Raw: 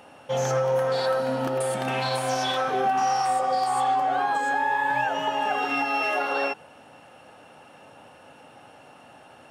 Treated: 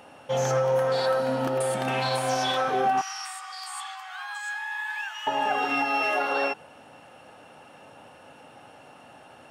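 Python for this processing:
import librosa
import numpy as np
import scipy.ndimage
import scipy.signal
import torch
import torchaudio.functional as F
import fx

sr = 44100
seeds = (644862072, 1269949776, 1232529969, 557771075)

y = fx.bessel_highpass(x, sr, hz=1800.0, order=8, at=(3.01, 5.27))
y = fx.quant_float(y, sr, bits=8)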